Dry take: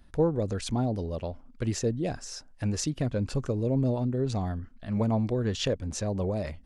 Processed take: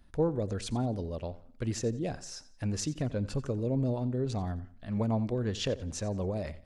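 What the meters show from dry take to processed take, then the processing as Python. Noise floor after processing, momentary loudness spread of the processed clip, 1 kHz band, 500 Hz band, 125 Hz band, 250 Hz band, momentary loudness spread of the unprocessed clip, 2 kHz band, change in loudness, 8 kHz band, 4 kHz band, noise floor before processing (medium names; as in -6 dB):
-56 dBFS, 8 LU, -3.5 dB, -3.5 dB, -3.5 dB, -3.5 dB, 8 LU, -3.5 dB, -3.5 dB, -3.5 dB, -3.5 dB, -54 dBFS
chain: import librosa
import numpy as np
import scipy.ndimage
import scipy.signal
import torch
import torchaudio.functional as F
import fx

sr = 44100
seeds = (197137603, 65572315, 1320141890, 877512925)

y = fx.echo_feedback(x, sr, ms=88, feedback_pct=34, wet_db=-17.5)
y = y * librosa.db_to_amplitude(-3.5)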